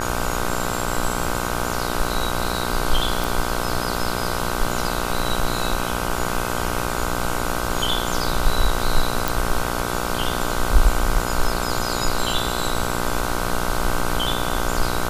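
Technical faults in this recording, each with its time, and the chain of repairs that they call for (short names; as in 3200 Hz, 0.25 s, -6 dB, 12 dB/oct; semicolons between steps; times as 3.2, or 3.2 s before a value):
buzz 60 Hz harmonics 26 -26 dBFS
3.24 pop
9.28 pop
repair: de-click; de-hum 60 Hz, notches 26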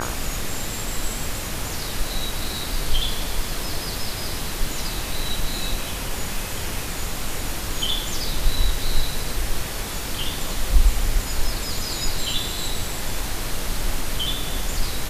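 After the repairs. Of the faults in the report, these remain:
none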